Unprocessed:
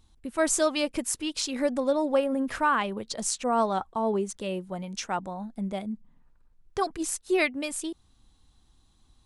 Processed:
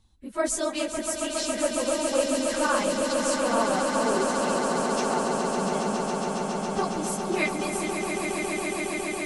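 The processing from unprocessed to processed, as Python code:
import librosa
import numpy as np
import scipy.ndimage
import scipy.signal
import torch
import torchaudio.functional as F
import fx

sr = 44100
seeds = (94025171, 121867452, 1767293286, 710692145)

y = fx.phase_scramble(x, sr, seeds[0], window_ms=50)
y = fx.echo_swell(y, sr, ms=138, loudest=8, wet_db=-7.5)
y = F.gain(torch.from_numpy(y), -2.5).numpy()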